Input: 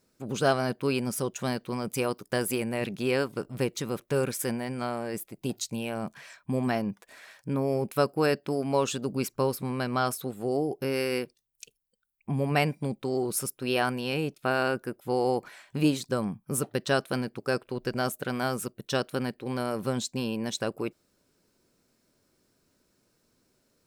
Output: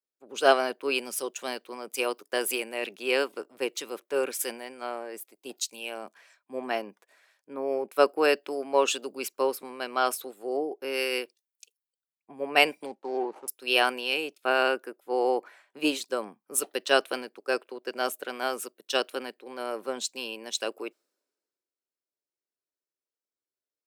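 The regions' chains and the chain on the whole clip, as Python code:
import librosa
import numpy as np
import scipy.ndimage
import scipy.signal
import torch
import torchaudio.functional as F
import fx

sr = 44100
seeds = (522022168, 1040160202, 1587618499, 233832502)

y = fx.chain(x, sr, fx.median_filter(points=25),
    fx.lowpass(hz=7100.0, slope=12),
    fx.peak_eq(hz=860.0, db=12.0, octaves=0.33), at=(12.86, 13.48))
y = scipy.signal.sosfilt(scipy.signal.butter(4, 330.0, 'highpass', fs=sr, output='sos'), y)
y = fx.dynamic_eq(y, sr, hz=2800.0, q=2.8, threshold_db=-50.0, ratio=4.0, max_db=7)
y = fx.band_widen(y, sr, depth_pct=70)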